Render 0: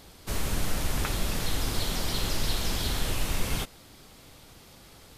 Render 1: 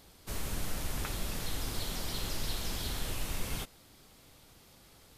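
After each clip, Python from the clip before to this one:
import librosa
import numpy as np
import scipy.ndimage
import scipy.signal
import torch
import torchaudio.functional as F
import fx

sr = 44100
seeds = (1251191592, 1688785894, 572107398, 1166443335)

y = fx.high_shelf(x, sr, hz=9200.0, db=4.0)
y = y * 10.0 ** (-7.5 / 20.0)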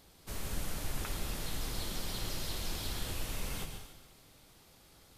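y = fx.rev_plate(x, sr, seeds[0], rt60_s=1.1, hf_ratio=1.0, predelay_ms=95, drr_db=5.0)
y = y * 10.0 ** (-3.0 / 20.0)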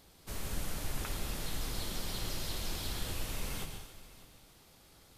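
y = x + 10.0 ** (-18.5 / 20.0) * np.pad(x, (int(601 * sr / 1000.0), 0))[:len(x)]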